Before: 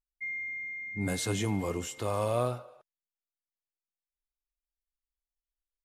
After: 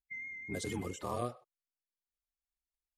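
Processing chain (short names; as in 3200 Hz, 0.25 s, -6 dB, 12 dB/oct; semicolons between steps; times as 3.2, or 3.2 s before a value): bin magnitudes rounded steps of 30 dB; granular stretch 0.51×, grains 50 ms; vibrato 4.6 Hz 29 cents; gain -5 dB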